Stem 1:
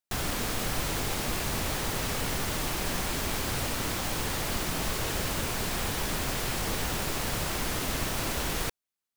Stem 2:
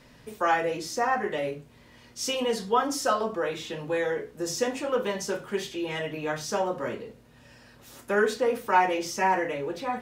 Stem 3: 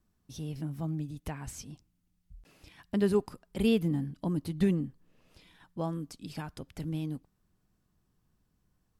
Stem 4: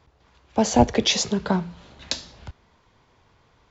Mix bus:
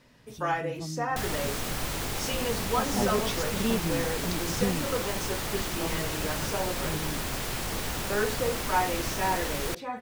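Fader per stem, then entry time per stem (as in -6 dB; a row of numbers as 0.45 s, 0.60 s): -1.5 dB, -5.0 dB, -3.0 dB, -15.0 dB; 1.05 s, 0.00 s, 0.00 s, 2.20 s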